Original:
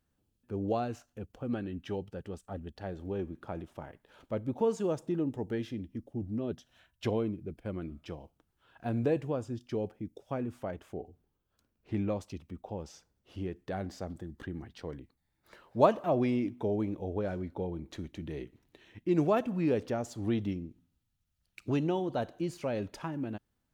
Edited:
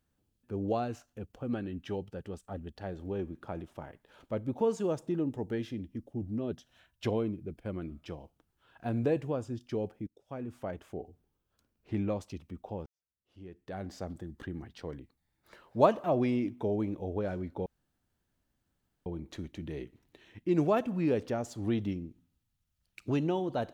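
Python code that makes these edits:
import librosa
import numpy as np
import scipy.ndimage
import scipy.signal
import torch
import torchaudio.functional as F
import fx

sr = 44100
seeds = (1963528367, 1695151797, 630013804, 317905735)

y = fx.edit(x, sr, fx.fade_in_from(start_s=10.07, length_s=0.62, floor_db=-20.5),
    fx.fade_in_span(start_s=12.86, length_s=1.12, curve='qua'),
    fx.insert_room_tone(at_s=17.66, length_s=1.4), tone=tone)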